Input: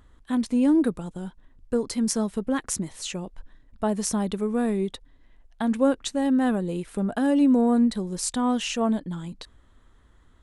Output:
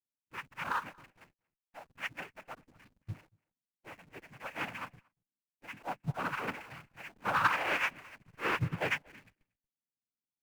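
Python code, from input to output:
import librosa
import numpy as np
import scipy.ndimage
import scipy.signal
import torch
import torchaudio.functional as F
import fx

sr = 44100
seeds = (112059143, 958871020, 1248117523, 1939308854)

p1 = fx.octave_mirror(x, sr, pivot_hz=620.0)
p2 = fx.peak_eq(p1, sr, hz=170.0, db=7.5, octaves=1.4)
p3 = p2 + 0.32 * np.pad(p2, (int(5.8 * sr / 1000.0), 0))[:len(p2)]
p4 = fx.auto_swell(p3, sr, attack_ms=121.0)
p5 = fx.noise_vocoder(p4, sr, seeds[0], bands=8)
p6 = fx.leveller(p5, sr, passes=1)
p7 = fx.schmitt(p6, sr, flips_db=-35.0)
p8 = p6 + F.gain(torch.from_numpy(p7), -8.0).numpy()
p9 = p8 + 10.0 ** (-12.0 / 20.0) * np.pad(p8, (int(232 * sr / 1000.0), 0))[:len(p8)]
p10 = fx.upward_expand(p9, sr, threshold_db=-38.0, expansion=2.5)
y = F.gain(torch.from_numpy(p10), -9.0).numpy()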